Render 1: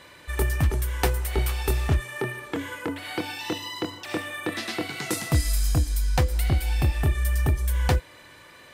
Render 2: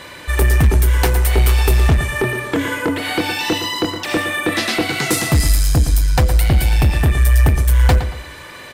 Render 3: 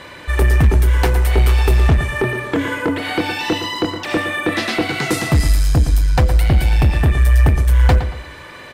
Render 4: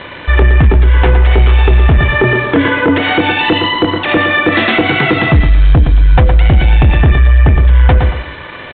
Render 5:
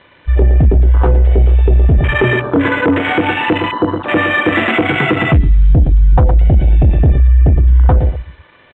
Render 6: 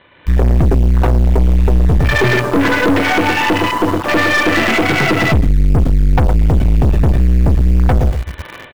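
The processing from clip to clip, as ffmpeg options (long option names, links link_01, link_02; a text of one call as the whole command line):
ffmpeg -i in.wav -filter_complex "[0:a]asplit=2[link_01][link_02];[link_02]alimiter=limit=-16dB:level=0:latency=1:release=111,volume=-1dB[link_03];[link_01][link_03]amix=inputs=2:normalize=0,asoftclip=type=tanh:threshold=-15.5dB,asplit=2[link_04][link_05];[link_05]adelay=115,lowpass=frequency=4100:poles=1,volume=-10dB,asplit=2[link_06][link_07];[link_07]adelay=115,lowpass=frequency=4100:poles=1,volume=0.35,asplit=2[link_08][link_09];[link_09]adelay=115,lowpass=frequency=4100:poles=1,volume=0.35,asplit=2[link_10][link_11];[link_11]adelay=115,lowpass=frequency=4100:poles=1,volume=0.35[link_12];[link_04][link_06][link_08][link_10][link_12]amix=inputs=5:normalize=0,volume=7.5dB" out.wav
ffmpeg -i in.wav -af "aemphasis=mode=reproduction:type=cd" out.wav
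ffmpeg -i in.wav -af "aresample=8000,aeval=exprs='sgn(val(0))*max(abs(val(0))-0.00631,0)':channel_layout=same,aresample=44100,alimiter=level_in=12.5dB:limit=-1dB:release=50:level=0:latency=1,volume=-1dB" out.wav
ffmpeg -i in.wav -af "afwtdn=0.224,volume=-1.5dB" out.wav
ffmpeg -i in.wav -filter_complex "[0:a]dynaudnorm=framelen=120:gausssize=3:maxgain=15dB,asplit=2[link_01][link_02];[link_02]acrusher=bits=3:mix=0:aa=0.000001,volume=-7dB[link_03];[link_01][link_03]amix=inputs=2:normalize=0,aeval=exprs='(tanh(2.82*val(0)+0.5)-tanh(0.5))/2.82':channel_layout=same" out.wav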